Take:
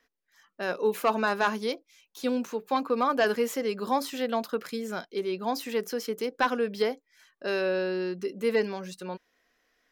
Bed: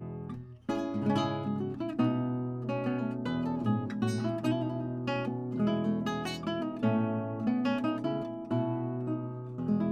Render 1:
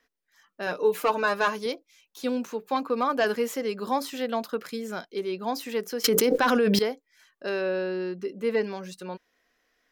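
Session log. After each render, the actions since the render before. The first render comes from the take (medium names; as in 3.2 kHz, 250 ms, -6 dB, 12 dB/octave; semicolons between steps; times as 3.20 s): 0.66–1.66 s: comb 6.6 ms; 6.04–6.79 s: level flattener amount 100%; 7.49–8.67 s: treble shelf 4.4 kHz -8.5 dB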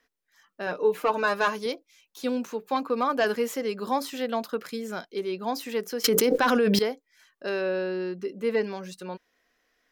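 0.62–1.14 s: treble shelf 3.8 kHz -9 dB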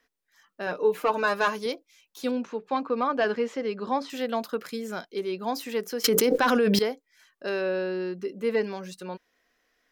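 2.31–4.10 s: distance through air 140 m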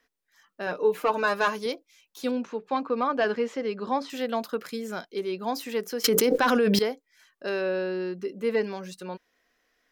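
no audible change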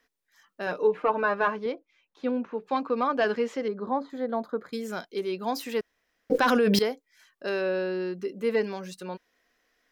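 0.87–2.58 s: low-pass 2 kHz; 3.68–4.73 s: boxcar filter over 16 samples; 5.81–6.30 s: room tone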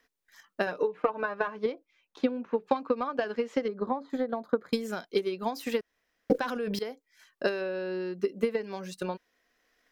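compression 10:1, threshold -30 dBFS, peak gain reduction 13.5 dB; transient shaper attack +10 dB, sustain -2 dB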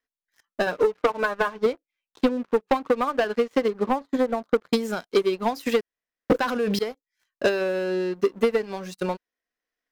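waveshaping leveller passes 3; upward expansion 1.5:1, over -36 dBFS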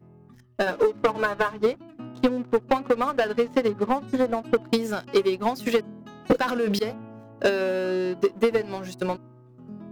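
add bed -11.5 dB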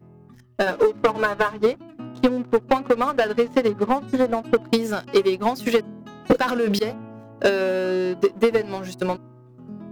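trim +3 dB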